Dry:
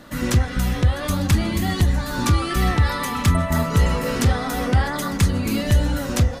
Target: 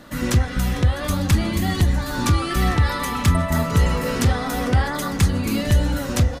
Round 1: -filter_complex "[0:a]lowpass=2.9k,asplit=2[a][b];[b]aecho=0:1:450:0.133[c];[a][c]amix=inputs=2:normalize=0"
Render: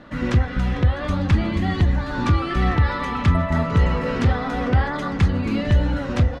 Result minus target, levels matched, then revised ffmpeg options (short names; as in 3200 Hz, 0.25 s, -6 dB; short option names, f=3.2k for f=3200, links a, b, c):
4000 Hz band -5.0 dB
-filter_complex "[0:a]asplit=2[a][b];[b]aecho=0:1:450:0.133[c];[a][c]amix=inputs=2:normalize=0"